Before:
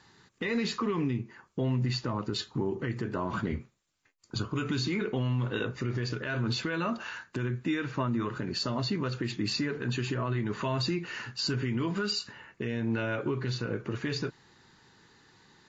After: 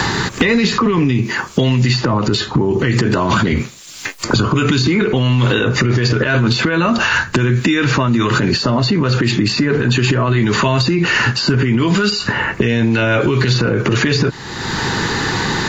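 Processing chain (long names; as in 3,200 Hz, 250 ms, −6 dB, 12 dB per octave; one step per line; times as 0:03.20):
boost into a limiter +31 dB
multiband upward and downward compressor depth 100%
level −6 dB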